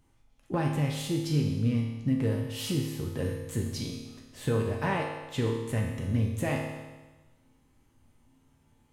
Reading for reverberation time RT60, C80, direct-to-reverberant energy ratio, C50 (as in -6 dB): 1.2 s, 5.5 dB, -1.0 dB, 3.0 dB